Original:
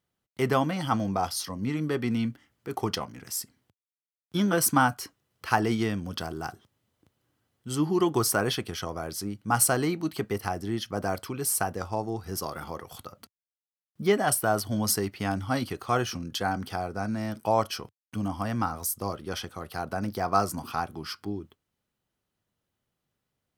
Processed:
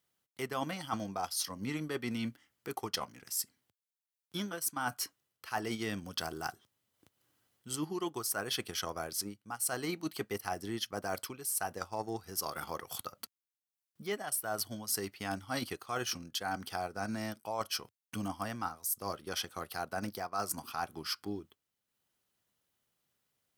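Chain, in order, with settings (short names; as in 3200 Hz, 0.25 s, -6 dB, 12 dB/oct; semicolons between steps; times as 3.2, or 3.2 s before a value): tilt +2 dB/oct; transient shaper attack +2 dB, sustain -6 dB; reverse; compressor 10:1, threshold -31 dBFS, peak gain reduction 21.5 dB; reverse; gain -1 dB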